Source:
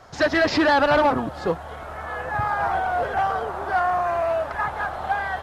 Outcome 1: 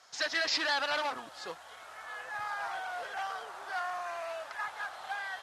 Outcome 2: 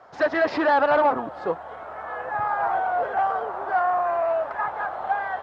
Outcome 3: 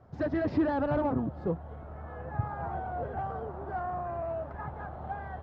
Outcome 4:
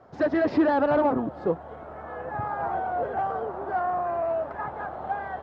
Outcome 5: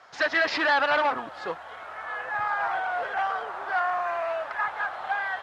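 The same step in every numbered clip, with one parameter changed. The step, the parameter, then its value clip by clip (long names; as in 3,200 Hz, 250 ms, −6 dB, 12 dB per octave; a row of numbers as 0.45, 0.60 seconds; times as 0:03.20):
resonant band-pass, frequency: 6,400, 800, 120, 310, 2,100 Hertz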